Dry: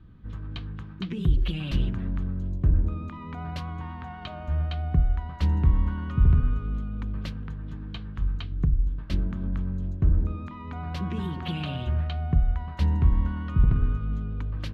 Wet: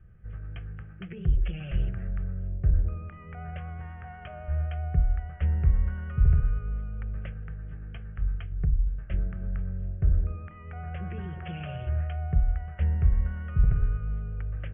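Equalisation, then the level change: brick-wall FIR low-pass 3.6 kHz; static phaser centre 1 kHz, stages 6; -1.0 dB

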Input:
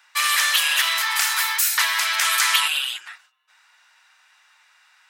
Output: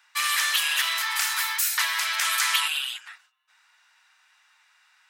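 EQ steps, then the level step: high-pass 610 Hz 12 dB/octave; -4.5 dB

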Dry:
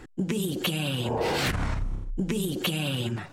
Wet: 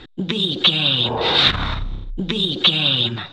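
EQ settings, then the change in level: dynamic bell 1.2 kHz, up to +7 dB, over -47 dBFS, Q 1.7; resonant low-pass 3.7 kHz, resonance Q 13; +3.5 dB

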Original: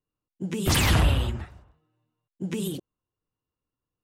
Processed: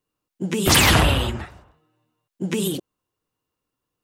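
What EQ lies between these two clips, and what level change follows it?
bass shelf 160 Hz -10 dB; +9.0 dB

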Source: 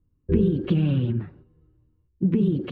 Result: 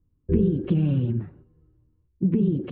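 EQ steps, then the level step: dynamic bell 1.4 kHz, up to -4 dB, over -47 dBFS, Q 1.1; distance through air 360 m; 0.0 dB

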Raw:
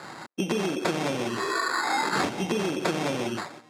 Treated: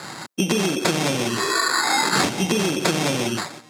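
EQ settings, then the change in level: peaking EQ 140 Hz +5.5 dB 1.7 oct; treble shelf 2.9 kHz +11 dB; +3.0 dB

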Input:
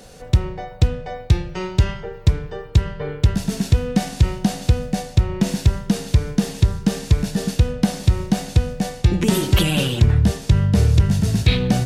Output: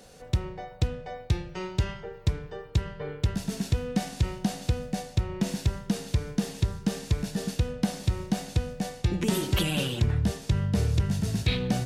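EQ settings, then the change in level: bass shelf 110 Hz -5 dB; -7.5 dB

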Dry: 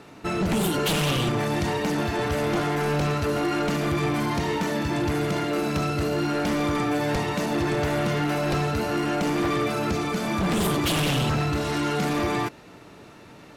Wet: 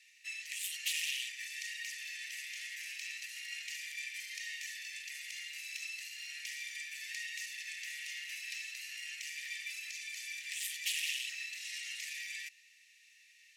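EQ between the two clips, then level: rippled Chebyshev high-pass 1.8 kHz, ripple 6 dB; -4.0 dB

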